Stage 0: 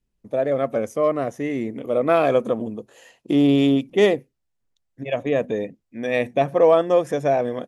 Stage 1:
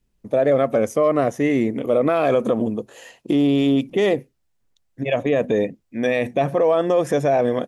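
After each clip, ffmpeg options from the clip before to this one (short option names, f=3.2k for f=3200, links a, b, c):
-af "alimiter=level_in=15dB:limit=-1dB:release=50:level=0:latency=1,volume=-8.5dB"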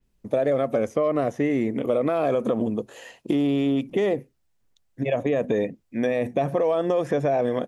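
-filter_complex "[0:a]acrossover=split=1000|2300|4800[a][b][c][d];[a]acompressor=threshold=-20dB:ratio=4[e];[b]acompressor=threshold=-38dB:ratio=4[f];[c]acompressor=threshold=-48dB:ratio=4[g];[d]acompressor=threshold=-53dB:ratio=4[h];[e][f][g][h]amix=inputs=4:normalize=0,adynamicequalizer=threshold=0.00501:dfrequency=4700:dqfactor=0.7:tfrequency=4700:tqfactor=0.7:attack=5:release=100:ratio=0.375:range=2:mode=cutabove:tftype=highshelf"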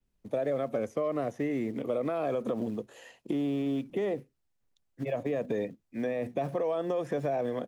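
-filter_complex "[0:a]acrossover=split=170|460|2000[a][b][c][d];[a]acrusher=bits=4:mode=log:mix=0:aa=0.000001[e];[d]alimiter=level_in=10.5dB:limit=-24dB:level=0:latency=1,volume=-10.5dB[f];[e][b][c][f]amix=inputs=4:normalize=0,volume=-8dB"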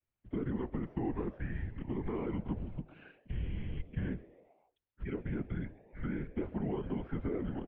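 -filter_complex "[0:a]afftfilt=real='hypot(re,im)*cos(2*PI*random(0))':imag='hypot(re,im)*sin(2*PI*random(1))':win_size=512:overlap=0.75,asplit=5[a][b][c][d][e];[b]adelay=133,afreqshift=140,volume=-22dB[f];[c]adelay=266,afreqshift=280,volume=-27dB[g];[d]adelay=399,afreqshift=420,volume=-32.1dB[h];[e]adelay=532,afreqshift=560,volume=-37.1dB[i];[a][f][g][h][i]amix=inputs=5:normalize=0,highpass=f=210:t=q:w=0.5412,highpass=f=210:t=q:w=1.307,lowpass=f=3.3k:t=q:w=0.5176,lowpass=f=3.3k:t=q:w=0.7071,lowpass=f=3.3k:t=q:w=1.932,afreqshift=-290,volume=1dB"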